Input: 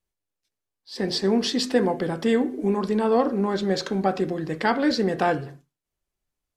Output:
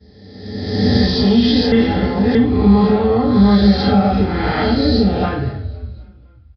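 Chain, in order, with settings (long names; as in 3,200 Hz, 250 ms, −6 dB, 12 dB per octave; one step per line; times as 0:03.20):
peak hold with a rise ahead of every peak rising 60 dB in 1.44 s
0:04.60–0:05.23: flat-topped bell 1,400 Hz −9 dB
downward compressor, threshold −24 dBFS, peak gain reduction 11 dB
high-frequency loss of the air 76 metres
echo with shifted repeats 255 ms, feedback 53%, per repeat −47 Hz, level −21 dB
convolution reverb RT60 0.45 s, pre-delay 3 ms, DRR −13.5 dB
downsampling to 11,025 Hz
0:01.72–0:02.35: reverse
level −1.5 dB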